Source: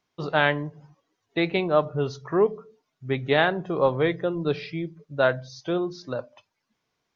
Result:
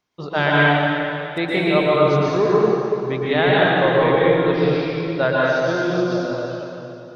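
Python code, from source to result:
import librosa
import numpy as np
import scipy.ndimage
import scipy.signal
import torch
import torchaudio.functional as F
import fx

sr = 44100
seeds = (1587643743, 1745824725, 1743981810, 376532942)

y = fx.median_filter(x, sr, points=9, at=(0.54, 1.38))
y = fx.rev_plate(y, sr, seeds[0], rt60_s=3.0, hf_ratio=0.85, predelay_ms=105, drr_db=-7.0)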